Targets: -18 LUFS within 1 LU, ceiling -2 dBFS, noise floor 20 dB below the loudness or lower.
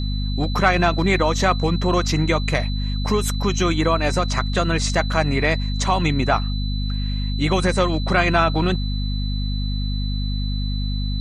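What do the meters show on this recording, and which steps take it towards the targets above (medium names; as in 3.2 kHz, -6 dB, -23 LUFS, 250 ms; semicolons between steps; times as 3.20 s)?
hum 50 Hz; highest harmonic 250 Hz; hum level -21 dBFS; steady tone 4 kHz; tone level -33 dBFS; loudness -21.0 LUFS; peak level -3.5 dBFS; loudness target -18.0 LUFS
-> de-hum 50 Hz, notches 5; band-stop 4 kHz, Q 30; trim +3 dB; peak limiter -2 dBFS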